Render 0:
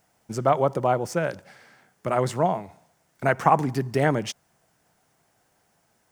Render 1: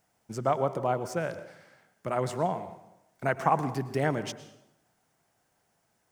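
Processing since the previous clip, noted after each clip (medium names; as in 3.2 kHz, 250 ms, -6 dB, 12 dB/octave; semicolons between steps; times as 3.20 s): plate-style reverb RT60 0.89 s, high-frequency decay 0.75×, pre-delay 95 ms, DRR 12.5 dB; trim -6 dB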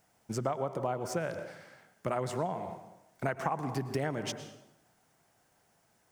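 compression 6:1, threshold -32 dBFS, peak gain reduction 13 dB; trim +3 dB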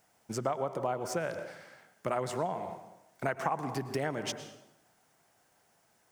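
bass shelf 220 Hz -6.5 dB; trim +1.5 dB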